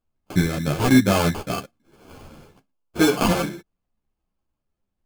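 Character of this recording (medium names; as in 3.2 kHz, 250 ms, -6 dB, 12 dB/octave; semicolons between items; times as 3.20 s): aliases and images of a low sample rate 1.9 kHz, jitter 0%; a shimmering, thickened sound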